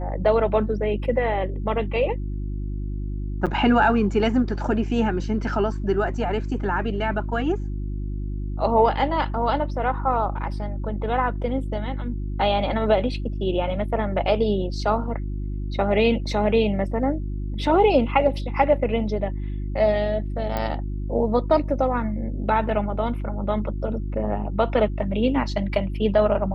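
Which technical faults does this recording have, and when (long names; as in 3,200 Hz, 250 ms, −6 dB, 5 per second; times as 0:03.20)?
mains hum 50 Hz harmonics 7 −28 dBFS
0:03.46–0:03.47: drop-out 6.9 ms
0:20.57: click −13 dBFS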